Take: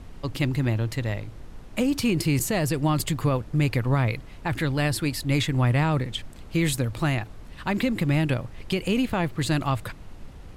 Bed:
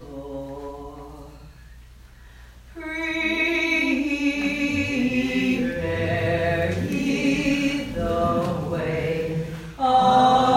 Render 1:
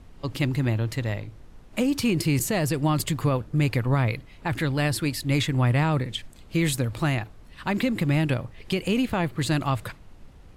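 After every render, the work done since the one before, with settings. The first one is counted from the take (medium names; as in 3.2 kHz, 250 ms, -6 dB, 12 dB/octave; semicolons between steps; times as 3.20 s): noise print and reduce 6 dB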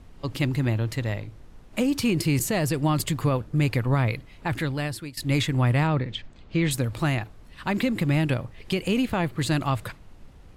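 4.51–5.17 s: fade out, to -16.5 dB; 5.87–6.71 s: Bessel low-pass 4 kHz, order 4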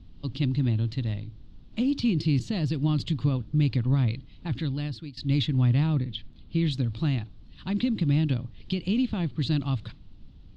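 Chebyshev low-pass 4.1 kHz, order 3; high-order bell 980 Hz -13 dB 2.9 oct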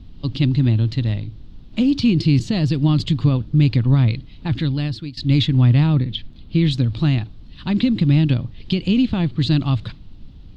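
trim +8.5 dB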